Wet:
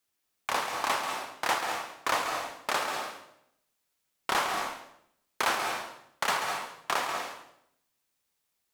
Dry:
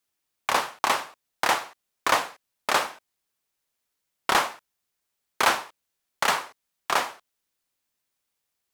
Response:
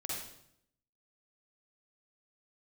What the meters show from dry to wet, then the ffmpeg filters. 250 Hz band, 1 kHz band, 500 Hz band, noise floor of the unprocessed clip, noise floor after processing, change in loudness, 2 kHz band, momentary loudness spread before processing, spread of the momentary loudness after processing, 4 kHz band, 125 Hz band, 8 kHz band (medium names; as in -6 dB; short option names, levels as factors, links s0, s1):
-4.0 dB, -4.0 dB, -3.5 dB, -81 dBFS, -79 dBFS, -5.0 dB, -4.0 dB, 15 LU, 12 LU, -4.0 dB, -3.5 dB, -4.0 dB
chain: -filter_complex "[0:a]alimiter=limit=0.178:level=0:latency=1:release=143,asplit=2[s0][s1];[1:a]atrim=start_sample=2205,adelay=137[s2];[s1][s2]afir=irnorm=-1:irlink=0,volume=0.562[s3];[s0][s3]amix=inputs=2:normalize=0"